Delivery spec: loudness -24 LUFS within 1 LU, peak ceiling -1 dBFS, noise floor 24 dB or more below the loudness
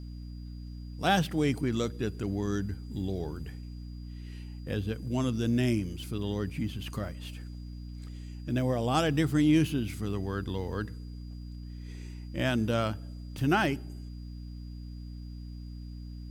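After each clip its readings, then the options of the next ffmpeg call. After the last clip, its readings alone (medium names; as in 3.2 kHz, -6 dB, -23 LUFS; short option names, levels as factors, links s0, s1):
hum 60 Hz; highest harmonic 300 Hz; hum level -38 dBFS; steady tone 4.8 kHz; tone level -61 dBFS; loudness -30.5 LUFS; peak level -13.0 dBFS; loudness target -24.0 LUFS
-> -af "bandreject=f=60:t=h:w=4,bandreject=f=120:t=h:w=4,bandreject=f=180:t=h:w=4,bandreject=f=240:t=h:w=4,bandreject=f=300:t=h:w=4"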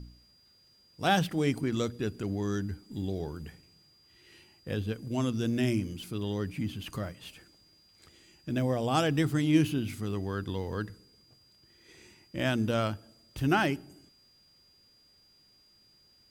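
hum not found; steady tone 4.8 kHz; tone level -61 dBFS
-> -af "bandreject=f=4800:w=30"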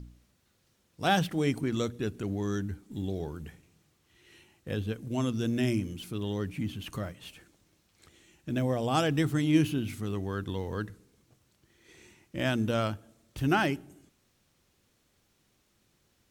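steady tone not found; loudness -31.0 LUFS; peak level -12.5 dBFS; loudness target -24.0 LUFS
-> -af "volume=2.24"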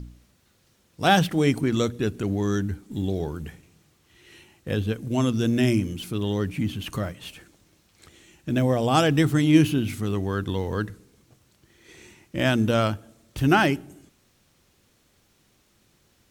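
loudness -24.0 LUFS; peak level -5.5 dBFS; noise floor -64 dBFS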